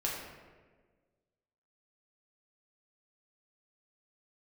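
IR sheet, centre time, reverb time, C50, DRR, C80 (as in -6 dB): 69 ms, 1.5 s, 1.5 dB, -4.0 dB, 3.5 dB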